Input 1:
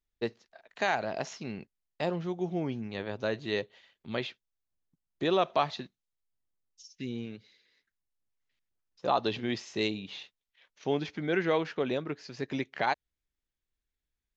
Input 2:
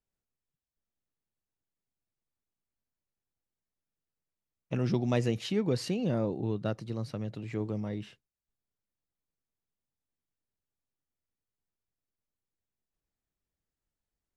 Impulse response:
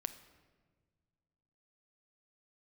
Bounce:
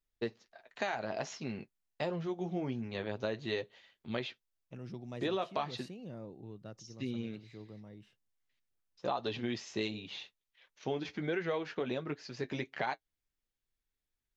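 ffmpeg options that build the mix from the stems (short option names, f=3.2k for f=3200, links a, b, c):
-filter_complex "[0:a]flanger=delay=7.4:depth=2.5:regen=-43:speed=1.4:shape=triangular,volume=2.5dB[a];[1:a]volume=-16dB[b];[a][b]amix=inputs=2:normalize=0,acompressor=threshold=-31dB:ratio=5"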